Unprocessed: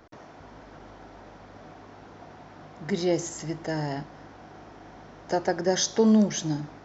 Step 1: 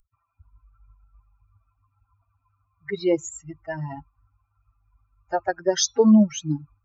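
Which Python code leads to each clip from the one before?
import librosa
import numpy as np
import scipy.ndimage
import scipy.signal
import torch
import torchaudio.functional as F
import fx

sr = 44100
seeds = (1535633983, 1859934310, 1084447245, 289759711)

y = fx.bin_expand(x, sr, power=3.0)
y = F.gain(torch.from_numpy(y), 7.0).numpy()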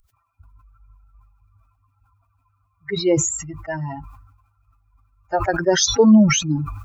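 y = fx.sustainer(x, sr, db_per_s=58.0)
y = F.gain(torch.from_numpy(y), 3.0).numpy()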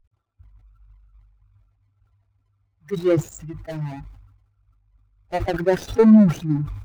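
y = scipy.signal.medfilt(x, 41)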